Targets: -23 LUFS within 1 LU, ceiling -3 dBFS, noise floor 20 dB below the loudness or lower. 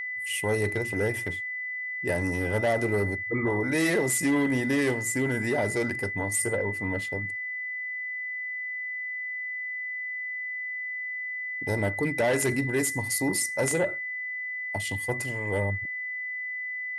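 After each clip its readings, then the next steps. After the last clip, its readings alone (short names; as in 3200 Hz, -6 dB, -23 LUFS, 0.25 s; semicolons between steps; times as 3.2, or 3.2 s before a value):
steady tone 2000 Hz; tone level -31 dBFS; loudness -28.0 LUFS; peak -14.0 dBFS; loudness target -23.0 LUFS
-> notch 2000 Hz, Q 30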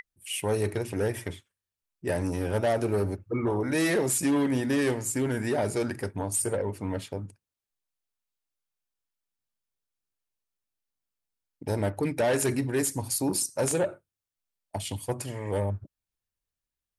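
steady tone none; loudness -28.5 LUFS; peak -15.0 dBFS; loudness target -23.0 LUFS
-> gain +5.5 dB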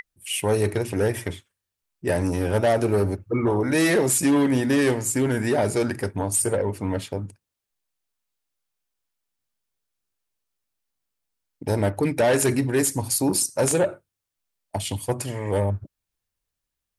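loudness -23.0 LUFS; peak -9.5 dBFS; noise floor -84 dBFS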